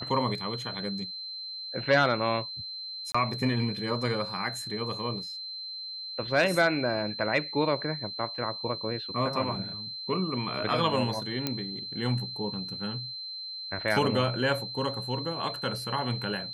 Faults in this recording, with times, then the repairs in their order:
tone 4100 Hz -36 dBFS
3.12–3.15 gap 25 ms
11.47 pop -13 dBFS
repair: de-click; notch 4100 Hz, Q 30; interpolate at 3.12, 25 ms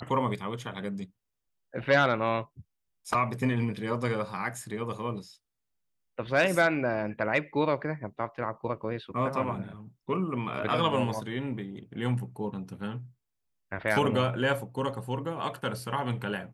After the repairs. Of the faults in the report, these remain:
none

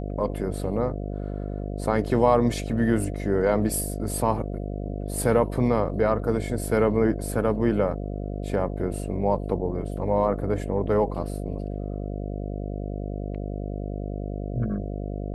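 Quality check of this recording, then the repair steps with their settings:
buzz 50 Hz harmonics 14 -31 dBFS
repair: de-hum 50 Hz, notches 14

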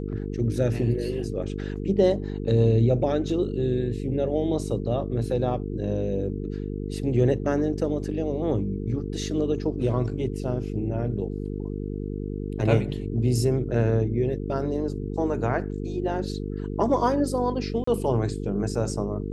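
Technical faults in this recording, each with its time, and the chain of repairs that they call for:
buzz 50 Hz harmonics 9 -31 dBFS
17.84–17.87 gap 34 ms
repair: de-hum 50 Hz, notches 9; interpolate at 17.84, 34 ms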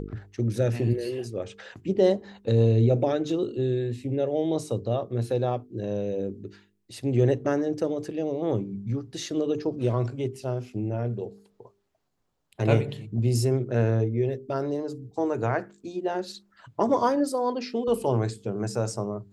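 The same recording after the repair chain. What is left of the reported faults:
none

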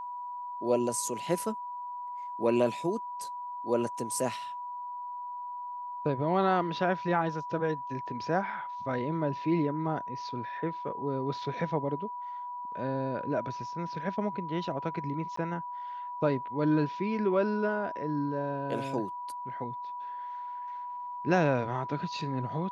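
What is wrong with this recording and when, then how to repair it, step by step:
tone 980 Hz -36 dBFS
15.36–15.37 gap 14 ms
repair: notch 980 Hz, Q 30; interpolate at 15.36, 14 ms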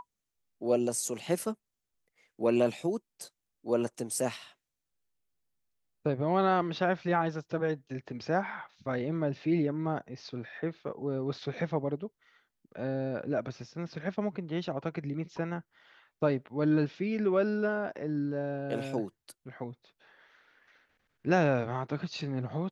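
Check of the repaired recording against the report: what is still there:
none

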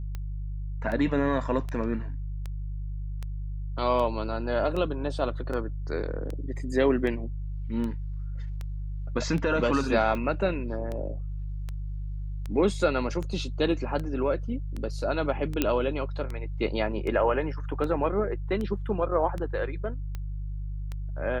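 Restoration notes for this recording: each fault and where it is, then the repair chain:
hum 50 Hz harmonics 3 -33 dBFS
tick 78 rpm -22 dBFS
15.62 pop -9 dBFS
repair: de-click; de-hum 50 Hz, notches 3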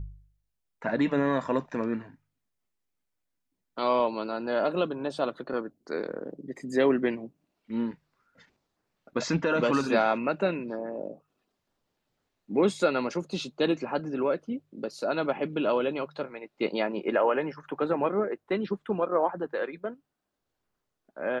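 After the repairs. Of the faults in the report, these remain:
none

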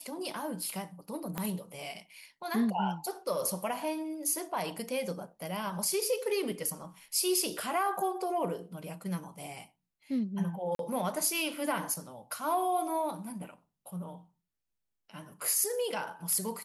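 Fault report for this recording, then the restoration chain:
1.38 pop -18 dBFS
10.75–10.79 gap 42 ms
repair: de-click; interpolate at 10.75, 42 ms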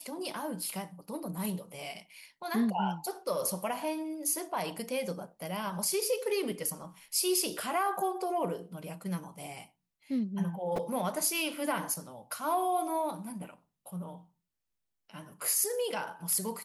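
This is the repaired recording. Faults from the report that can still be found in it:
1.38 pop

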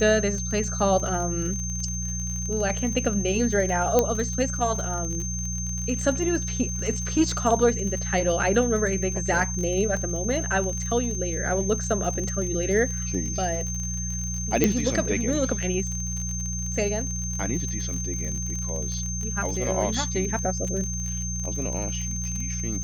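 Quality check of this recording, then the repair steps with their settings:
crackle 43/s -30 dBFS
hum 60 Hz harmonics 3 -31 dBFS
tone 6300 Hz -31 dBFS
3.99 pop -6 dBFS
14.64 pop -5 dBFS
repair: de-click; de-hum 60 Hz, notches 3; notch 6300 Hz, Q 30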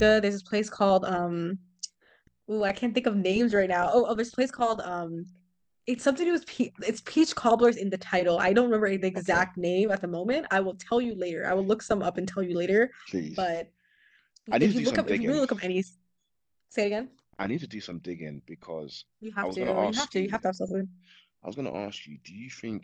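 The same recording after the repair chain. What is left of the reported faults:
none

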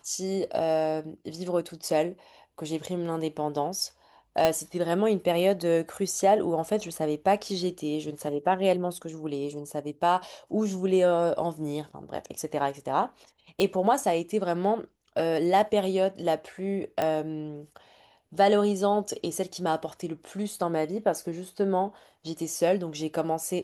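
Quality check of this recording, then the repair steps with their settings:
4.45 pop -8 dBFS
13.6 pop -13 dBFS
17.02 pop -14 dBFS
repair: de-click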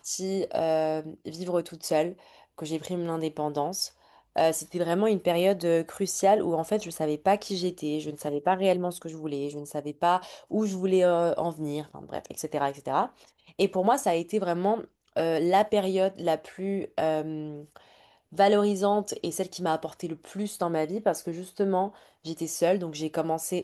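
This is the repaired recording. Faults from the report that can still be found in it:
4.45 pop
13.6 pop

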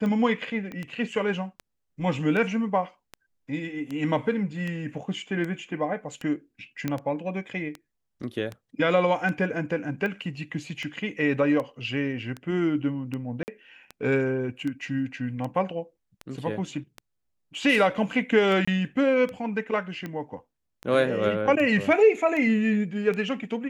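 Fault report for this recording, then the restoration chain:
tick 78 rpm -21 dBFS
0.72 pop -24 dBFS
6.88 pop -14 dBFS
13.43–13.48 gap 49 ms
18.65–18.68 gap 25 ms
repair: de-click; interpolate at 13.43, 49 ms; interpolate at 18.65, 25 ms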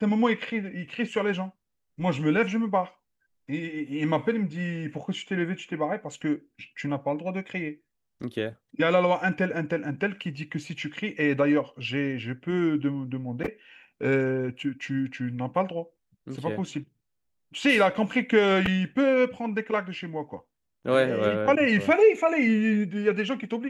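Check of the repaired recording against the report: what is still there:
0.72 pop

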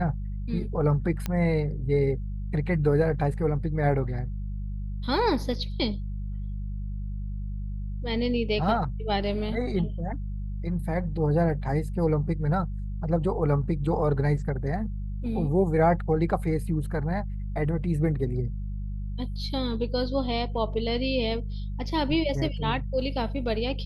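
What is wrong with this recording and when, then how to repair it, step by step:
hum 50 Hz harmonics 4 -32 dBFS
1.26 pop -15 dBFS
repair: de-click; de-hum 50 Hz, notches 4

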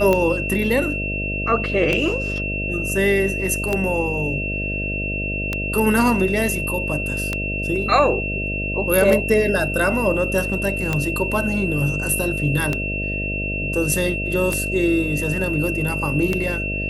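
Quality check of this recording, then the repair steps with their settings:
buzz 50 Hz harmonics 13 -27 dBFS
tick 33 1/3 rpm -7 dBFS
tone 2700 Hz -25 dBFS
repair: de-click; de-hum 50 Hz, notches 13; notch 2700 Hz, Q 30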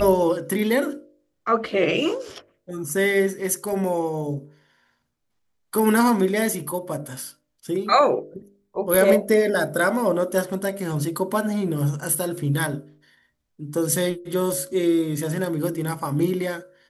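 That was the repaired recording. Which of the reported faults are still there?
none

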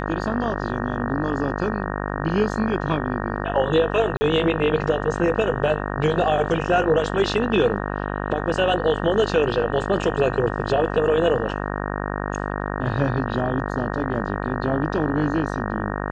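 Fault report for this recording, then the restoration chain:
buzz 50 Hz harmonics 37 -27 dBFS
4.17–4.21 gap 40 ms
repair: de-hum 50 Hz, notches 37; interpolate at 4.17, 40 ms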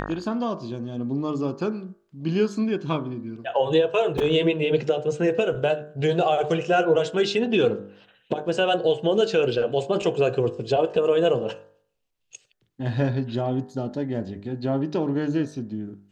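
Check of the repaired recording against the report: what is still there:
none

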